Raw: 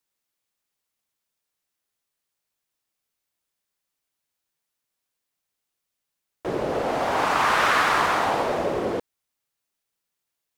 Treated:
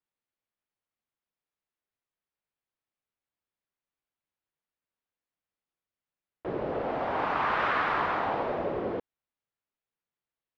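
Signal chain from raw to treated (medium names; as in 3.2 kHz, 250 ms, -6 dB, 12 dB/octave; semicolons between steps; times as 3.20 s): distance through air 340 m; trim -5 dB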